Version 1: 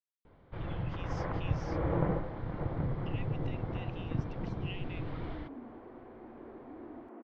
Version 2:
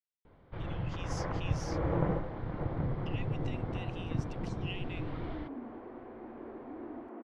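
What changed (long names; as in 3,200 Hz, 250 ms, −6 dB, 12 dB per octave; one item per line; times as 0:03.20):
speech: remove high-frequency loss of the air 180 metres
second sound +3.5 dB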